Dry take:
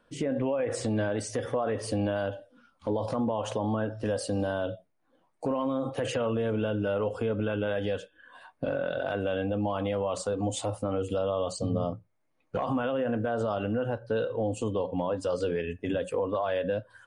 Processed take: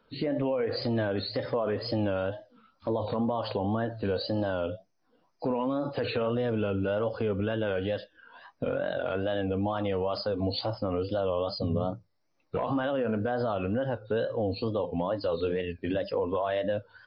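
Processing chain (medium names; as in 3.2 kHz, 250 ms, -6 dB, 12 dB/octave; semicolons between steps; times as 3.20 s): knee-point frequency compression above 3.8 kHz 4:1; wow and flutter 130 cents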